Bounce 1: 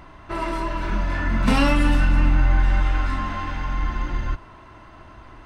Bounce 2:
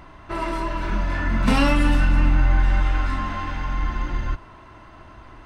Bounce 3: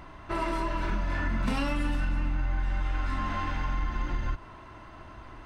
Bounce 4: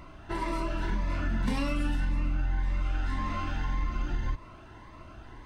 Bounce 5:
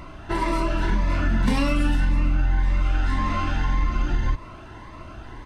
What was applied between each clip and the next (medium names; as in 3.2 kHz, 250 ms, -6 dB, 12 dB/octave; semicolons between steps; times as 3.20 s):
no audible change
compression, threshold -23 dBFS, peak gain reduction 10.5 dB; trim -2 dB
Shepard-style phaser rising 1.8 Hz
resampled via 32 kHz; trim +8 dB